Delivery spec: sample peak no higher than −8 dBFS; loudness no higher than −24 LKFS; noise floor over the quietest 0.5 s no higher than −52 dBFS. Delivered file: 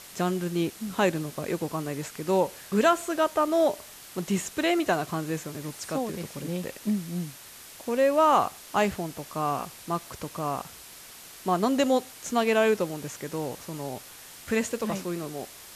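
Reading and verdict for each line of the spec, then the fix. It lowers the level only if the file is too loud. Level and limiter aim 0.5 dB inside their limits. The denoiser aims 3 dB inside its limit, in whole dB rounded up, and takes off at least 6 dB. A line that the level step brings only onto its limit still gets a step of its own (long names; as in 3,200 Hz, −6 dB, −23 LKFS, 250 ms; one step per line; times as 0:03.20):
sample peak −9.0 dBFS: in spec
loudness −28.0 LKFS: in spec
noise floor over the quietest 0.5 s −47 dBFS: out of spec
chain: broadband denoise 8 dB, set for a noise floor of −47 dBFS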